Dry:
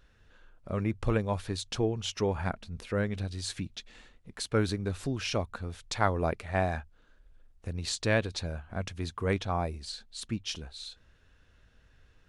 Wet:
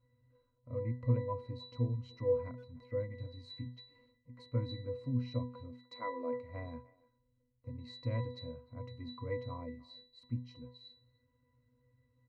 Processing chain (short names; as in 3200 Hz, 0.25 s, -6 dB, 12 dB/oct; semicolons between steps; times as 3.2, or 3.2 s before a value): 5.72–6.33 HPF 260 Hz 24 dB/oct; octave resonator B, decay 0.39 s; speakerphone echo 0.3 s, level -22 dB; gain +9 dB